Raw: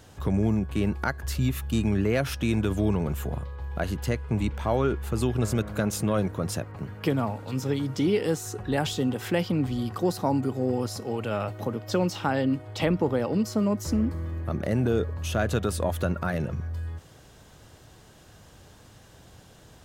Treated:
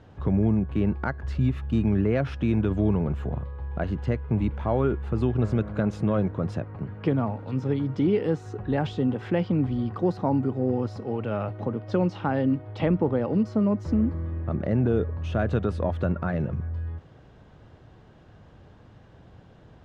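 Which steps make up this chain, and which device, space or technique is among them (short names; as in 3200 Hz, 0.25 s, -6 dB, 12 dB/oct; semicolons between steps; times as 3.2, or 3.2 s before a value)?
phone in a pocket (LPF 3600 Hz 12 dB/oct; bell 160 Hz +2.5 dB 2.2 oct; high shelf 2300 Hz -9.5 dB)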